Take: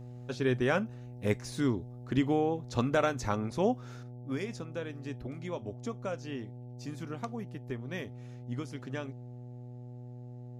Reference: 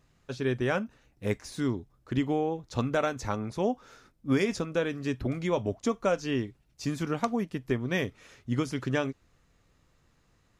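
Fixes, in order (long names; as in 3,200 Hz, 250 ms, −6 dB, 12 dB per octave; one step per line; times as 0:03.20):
hum removal 122.7 Hz, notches 7
level 0 dB, from 0:04.03 +10 dB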